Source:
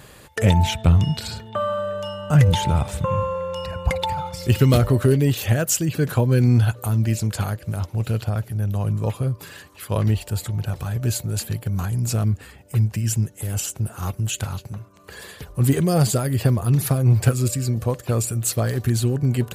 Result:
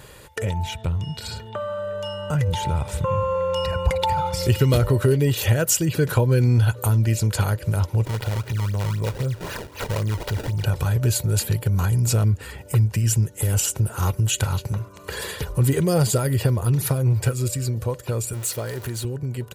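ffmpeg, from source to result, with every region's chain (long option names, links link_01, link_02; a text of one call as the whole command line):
ffmpeg -i in.wav -filter_complex "[0:a]asettb=1/sr,asplit=3[link_01][link_02][link_03];[link_01]atrim=end=8.054[link_04];[link_02]atrim=start=8.05:end=10.63,asetpts=PTS-STARTPTS,afade=type=in:duration=0.004:curve=qsin,afade=type=out:start_time=2.576:duration=0.004:curve=qsin,acompressor=threshold=-32dB:ratio=2.5:attack=3.2:release=140:knee=1:detection=peak,acrusher=samples=24:mix=1:aa=0.000001:lfo=1:lforange=38.4:lforate=3.9[link_05];[link_03]atrim=start=10.626[link_06];[link_04][link_05]acrossfade=duration=0.004:curve1=hsin:curve2=qsin[link_07];[link_07][link_06]acrossfade=duration=0.004:curve1=qsin:curve2=hsin,asettb=1/sr,asplit=3[link_08][link_09][link_10];[link_08]atrim=end=18.334[link_11];[link_09]atrim=start=18.33:end=19.05,asetpts=PTS-STARTPTS,afade=type=in:duration=0.004:curve=qsin,afade=type=out:start_time=0.716:duration=0.004:curve=qsin,aeval=exprs='val(0)+0.5*0.0376*sgn(val(0))':channel_layout=same,highpass=63,equalizer=frequency=110:width=0.63:gain=-6[link_12];[link_10]atrim=start=19.046[link_13];[link_11][link_12]acrossfade=duration=0.004:curve1=hsin:curve2=qsin[link_14];[link_14][link_13]acrossfade=duration=0.004:curve1=qsin:curve2=hsin,acompressor=threshold=-31dB:ratio=2,aecho=1:1:2.1:0.37,dynaudnorm=framelen=890:gausssize=7:maxgain=8.5dB" out.wav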